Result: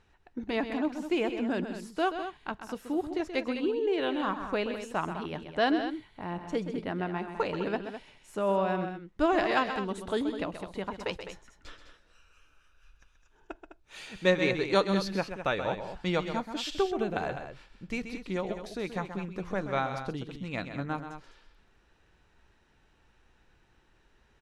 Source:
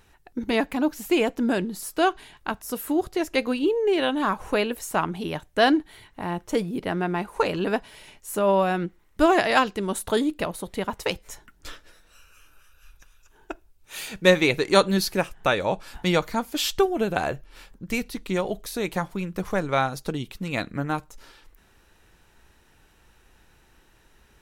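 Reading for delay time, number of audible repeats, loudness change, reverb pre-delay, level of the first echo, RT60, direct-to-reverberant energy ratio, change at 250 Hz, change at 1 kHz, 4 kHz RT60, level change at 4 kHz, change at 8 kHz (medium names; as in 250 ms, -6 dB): 130 ms, 2, -6.5 dB, no reverb, -9.5 dB, no reverb, no reverb, -6.5 dB, -6.5 dB, no reverb, -8.5 dB, -15.0 dB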